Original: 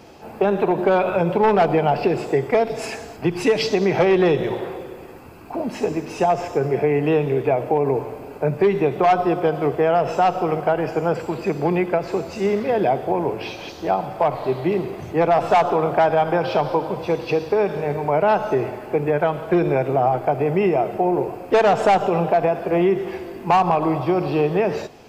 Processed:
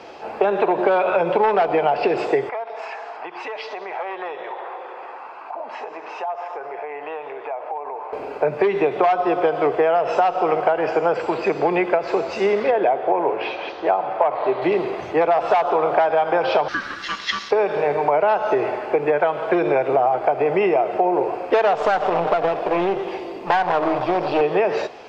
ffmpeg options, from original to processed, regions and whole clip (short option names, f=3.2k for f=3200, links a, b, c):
-filter_complex "[0:a]asettb=1/sr,asplit=3[a][b][c];[a]atrim=end=2.494[d];[b]atrim=start=2.49:end=8.13,asetpts=PTS-STARTPTS,afade=t=in:d=0.004:c=qsin,afade=t=out:st=5.636:d=0.004:c=qsin,highpass=f=900:t=q:w=1.8,aemphasis=mode=reproduction:type=riaa,acompressor=threshold=-38dB:ratio=3:attack=3.2:release=140:knee=1:detection=peak[e];[c]atrim=start=8.126[f];[d][e]acrossfade=d=0.004:c1=hsin:c2=qsin[g];[g][f]acrossfade=d=0.004:c1=qsin:c2=hsin,asettb=1/sr,asplit=3[h][i][j];[h]atrim=end=12.714[k];[i]atrim=start=12.71:end=14.62,asetpts=PTS-STARTPTS,afade=t=in:d=0.004:c=qsin,afade=t=out:st=1.906:d=0.004:c=qsin,lowpass=8.1k,bass=f=250:g=-6,treble=f=4k:g=-15[l];[j]atrim=start=14.616[m];[k][l]acrossfade=d=0.004:c1=hsin:c2=qsin[n];[n][m]acrossfade=d=0.004:c1=qsin:c2=hsin,asettb=1/sr,asplit=3[o][p][q];[o]atrim=end=16.684[r];[p]atrim=start=16.68:end=17.51,asetpts=PTS-STARTPTS,afade=t=in:d=0.004:c=qsin,afade=t=out:st=0.826:d=0.004:c=qsin,highpass=920,equalizer=f=6.1k:t=o:w=1.7:g=12.5,aeval=exprs='val(0)*sin(2*PI*680*n/s)':c=same[s];[q]atrim=start=17.506[t];[r][s]acrossfade=d=0.004:c1=hsin:c2=qsin[u];[u][t]acrossfade=d=0.004:c1=qsin:c2=hsin,asettb=1/sr,asplit=3[v][w][x];[v]atrim=end=21.754[y];[w]atrim=start=21.75:end=24.41,asetpts=PTS-STARTPTS,afade=t=in:d=0.004:c=qsin,afade=t=out:st=2.656:d=0.004:c=qsin,equalizer=f=1.6k:w=1.9:g=-12,aecho=1:1:6.7:0.39,atrim=end_sample=117306,aeval=exprs='clip(val(0),-1,0.0335)':c=same[z];[x]atrim=start=24.406[aa];[y][z]acrossfade=d=0.004:c1=hsin:c2=qsin[ab];[ab][aa]acrossfade=d=0.004:c1=qsin:c2=hsin,acrossover=split=380 6400:gain=0.141 1 0.158[ac][ad][ae];[ac][ad][ae]amix=inputs=3:normalize=0,acompressor=threshold=-23dB:ratio=6,highshelf=f=5.9k:g=-9.5,volume=8.5dB"